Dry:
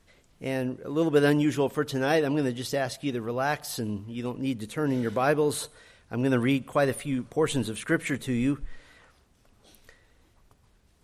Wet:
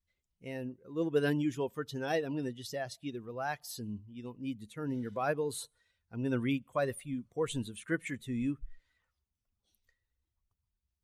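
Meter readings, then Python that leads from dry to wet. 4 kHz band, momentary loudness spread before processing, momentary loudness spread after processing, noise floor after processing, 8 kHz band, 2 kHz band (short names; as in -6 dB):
-9.0 dB, 9 LU, 11 LU, under -85 dBFS, -8.5 dB, -9.0 dB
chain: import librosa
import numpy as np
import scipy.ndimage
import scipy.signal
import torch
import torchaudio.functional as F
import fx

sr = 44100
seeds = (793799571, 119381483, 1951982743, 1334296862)

y = fx.bin_expand(x, sr, power=1.5)
y = F.gain(torch.from_numpy(y), -6.0).numpy()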